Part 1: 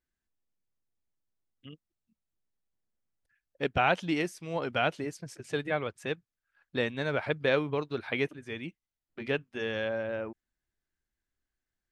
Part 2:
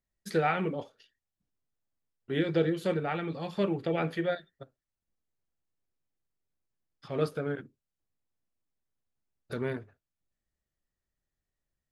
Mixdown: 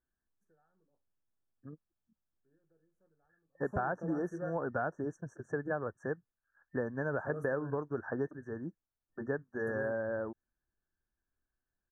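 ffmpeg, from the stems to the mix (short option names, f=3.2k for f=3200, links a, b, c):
-filter_complex "[0:a]lowpass=3k,volume=-0.5dB,asplit=2[a][b];[1:a]alimiter=limit=-19dB:level=0:latency=1:release=394,adelay=150,volume=-9.5dB[c];[b]apad=whole_len=531965[d];[c][d]sidechaingate=range=-34dB:threshold=-56dB:ratio=16:detection=peak[e];[a][e]amix=inputs=2:normalize=0,afftfilt=real='re*(1-between(b*sr/4096,1800,5600))':imag='im*(1-between(b*sr/4096,1800,5600))':win_size=4096:overlap=0.75,acompressor=threshold=-30dB:ratio=6"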